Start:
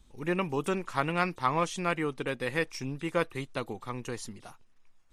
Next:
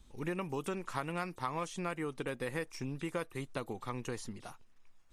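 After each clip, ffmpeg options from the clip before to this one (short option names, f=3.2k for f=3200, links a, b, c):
-filter_complex "[0:a]acrossover=split=1900|6500[a][b][c];[a]acompressor=threshold=-35dB:ratio=4[d];[b]acompressor=threshold=-51dB:ratio=4[e];[c]acompressor=threshold=-52dB:ratio=4[f];[d][e][f]amix=inputs=3:normalize=0"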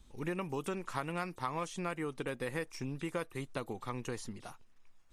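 -af anull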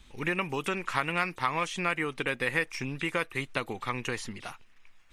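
-af "equalizer=f=2.3k:w=0.81:g=12,volume=3.5dB"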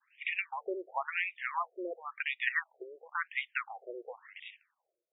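-af "agate=range=-33dB:threshold=-49dB:ratio=3:detection=peak,afftfilt=real='re*between(b*sr/1024,450*pow(2700/450,0.5+0.5*sin(2*PI*0.95*pts/sr))/1.41,450*pow(2700/450,0.5+0.5*sin(2*PI*0.95*pts/sr))*1.41)':imag='im*between(b*sr/1024,450*pow(2700/450,0.5+0.5*sin(2*PI*0.95*pts/sr))/1.41,450*pow(2700/450,0.5+0.5*sin(2*PI*0.95*pts/sr))*1.41)':win_size=1024:overlap=0.75"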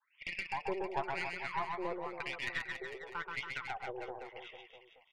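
-af "highpass=340,equalizer=f=500:t=q:w=4:g=-3,equalizer=f=740:t=q:w=4:g=3,equalizer=f=1.2k:t=q:w=4:g=-10,equalizer=f=1.7k:t=q:w=4:g=-10,equalizer=f=2.5k:t=q:w=4:g=-9,lowpass=f=3.4k:w=0.5412,lowpass=f=3.4k:w=1.3066,aeval=exprs='(tanh(44.7*val(0)+0.55)-tanh(0.55))/44.7':c=same,aecho=1:1:130|279.5|451.4|649.1|876.5:0.631|0.398|0.251|0.158|0.1,volume=4.5dB"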